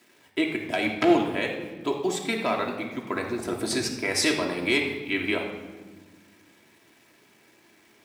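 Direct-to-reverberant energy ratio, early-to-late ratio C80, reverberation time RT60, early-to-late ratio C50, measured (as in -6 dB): -0.5 dB, 7.5 dB, 1.3 s, 5.0 dB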